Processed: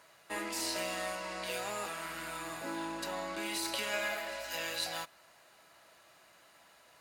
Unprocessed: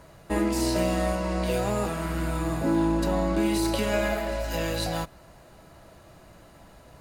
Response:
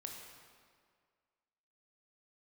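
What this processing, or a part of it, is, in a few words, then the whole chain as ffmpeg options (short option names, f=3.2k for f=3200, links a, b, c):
filter by subtraction: -filter_complex "[0:a]asplit=2[a][b];[b]lowpass=2.2k,volume=-1[c];[a][c]amix=inputs=2:normalize=0,volume=-4dB"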